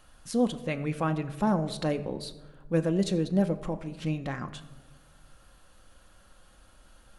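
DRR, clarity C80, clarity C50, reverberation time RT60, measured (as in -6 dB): 7.0 dB, 15.5 dB, 14.5 dB, 1.2 s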